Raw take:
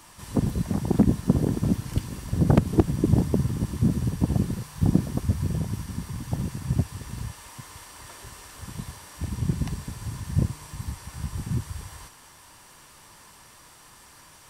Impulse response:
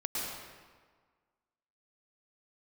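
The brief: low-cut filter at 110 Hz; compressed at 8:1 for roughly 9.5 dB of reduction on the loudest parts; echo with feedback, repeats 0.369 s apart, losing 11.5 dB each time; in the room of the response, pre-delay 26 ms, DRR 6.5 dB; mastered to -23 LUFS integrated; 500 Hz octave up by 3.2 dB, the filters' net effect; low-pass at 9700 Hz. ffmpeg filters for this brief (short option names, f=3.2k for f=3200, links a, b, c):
-filter_complex "[0:a]highpass=110,lowpass=9.7k,equalizer=f=500:t=o:g=4.5,acompressor=threshold=-24dB:ratio=8,aecho=1:1:369|738|1107:0.266|0.0718|0.0194,asplit=2[a][b];[1:a]atrim=start_sample=2205,adelay=26[c];[b][c]afir=irnorm=-1:irlink=0,volume=-11.5dB[d];[a][d]amix=inputs=2:normalize=0,volume=9dB"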